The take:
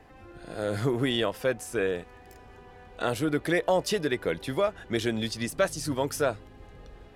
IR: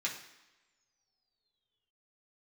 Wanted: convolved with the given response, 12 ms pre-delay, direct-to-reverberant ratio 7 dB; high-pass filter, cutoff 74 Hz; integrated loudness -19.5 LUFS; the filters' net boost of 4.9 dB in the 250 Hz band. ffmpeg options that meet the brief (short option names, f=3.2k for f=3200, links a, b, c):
-filter_complex "[0:a]highpass=74,equalizer=f=250:t=o:g=6.5,asplit=2[a][b];[1:a]atrim=start_sample=2205,adelay=12[c];[b][c]afir=irnorm=-1:irlink=0,volume=-10.5dB[d];[a][d]amix=inputs=2:normalize=0,volume=6.5dB"